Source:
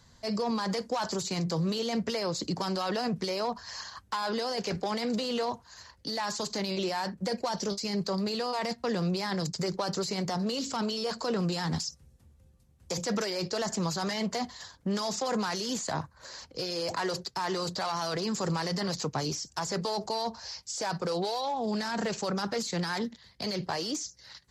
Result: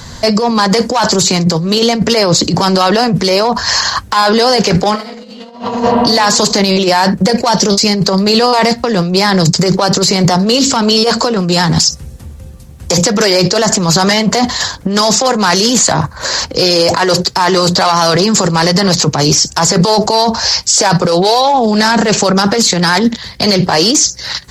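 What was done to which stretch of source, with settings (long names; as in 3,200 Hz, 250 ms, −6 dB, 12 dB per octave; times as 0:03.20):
0:04.91–0:05.65: thrown reverb, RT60 1.5 s, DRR −11.5 dB
whole clip: compressor whose output falls as the input rises −33 dBFS, ratio −0.5; boost into a limiter +26.5 dB; level −1 dB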